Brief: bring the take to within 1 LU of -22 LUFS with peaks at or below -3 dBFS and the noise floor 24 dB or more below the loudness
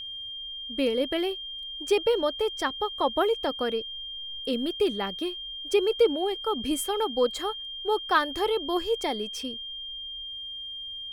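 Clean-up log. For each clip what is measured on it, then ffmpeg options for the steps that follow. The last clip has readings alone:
steady tone 3.2 kHz; tone level -35 dBFS; loudness -28.0 LUFS; peak level -10.0 dBFS; loudness target -22.0 LUFS
-> -af "bandreject=f=3200:w=30"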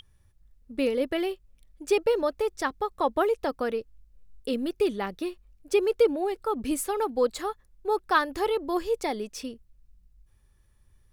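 steady tone not found; loudness -28.0 LUFS; peak level -10.0 dBFS; loudness target -22.0 LUFS
-> -af "volume=2"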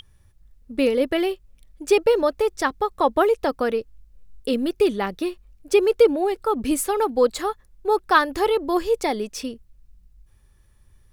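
loudness -22.0 LUFS; peak level -4.0 dBFS; noise floor -56 dBFS

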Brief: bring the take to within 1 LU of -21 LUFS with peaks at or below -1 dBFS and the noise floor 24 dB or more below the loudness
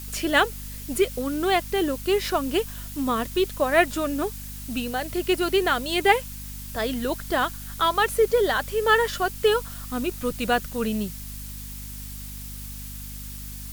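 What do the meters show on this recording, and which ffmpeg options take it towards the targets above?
hum 50 Hz; highest harmonic 250 Hz; hum level -36 dBFS; noise floor -37 dBFS; noise floor target -48 dBFS; loudness -24.0 LUFS; peak level -5.0 dBFS; loudness target -21.0 LUFS
-> -af "bandreject=f=50:t=h:w=6,bandreject=f=100:t=h:w=6,bandreject=f=150:t=h:w=6,bandreject=f=200:t=h:w=6,bandreject=f=250:t=h:w=6"
-af "afftdn=nr=11:nf=-37"
-af "volume=1.41"

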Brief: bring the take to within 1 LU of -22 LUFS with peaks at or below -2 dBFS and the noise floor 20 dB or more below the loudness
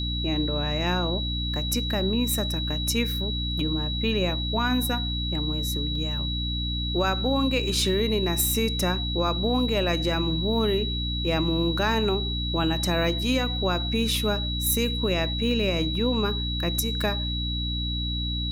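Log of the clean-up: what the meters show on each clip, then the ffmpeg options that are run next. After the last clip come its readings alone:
hum 60 Hz; highest harmonic 300 Hz; hum level -27 dBFS; steady tone 3.9 kHz; tone level -30 dBFS; loudness -25.0 LUFS; peak level -10.5 dBFS; loudness target -22.0 LUFS
-> -af "bandreject=f=60:t=h:w=4,bandreject=f=120:t=h:w=4,bandreject=f=180:t=h:w=4,bandreject=f=240:t=h:w=4,bandreject=f=300:t=h:w=4"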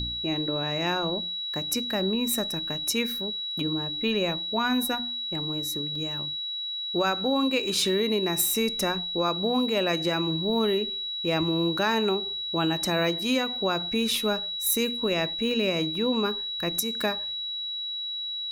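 hum not found; steady tone 3.9 kHz; tone level -30 dBFS
-> -af "bandreject=f=3900:w=30"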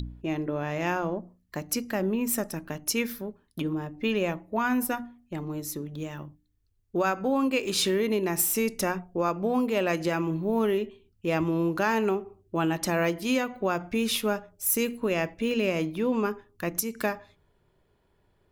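steady tone not found; loudness -28.0 LUFS; peak level -11.5 dBFS; loudness target -22.0 LUFS
-> -af "volume=2"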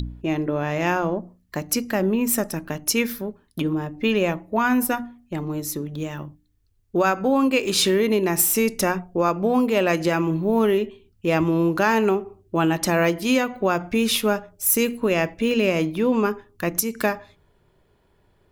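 loudness -22.0 LUFS; peak level -5.5 dBFS; noise floor -63 dBFS

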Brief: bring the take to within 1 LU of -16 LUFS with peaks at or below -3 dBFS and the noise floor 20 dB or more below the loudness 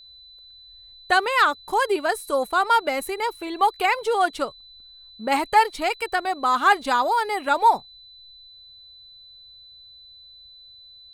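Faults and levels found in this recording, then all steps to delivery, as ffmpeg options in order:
steady tone 4 kHz; tone level -45 dBFS; loudness -22.0 LUFS; peak level -6.5 dBFS; loudness target -16.0 LUFS
-> -af "bandreject=f=4000:w=30"
-af "volume=2,alimiter=limit=0.708:level=0:latency=1"

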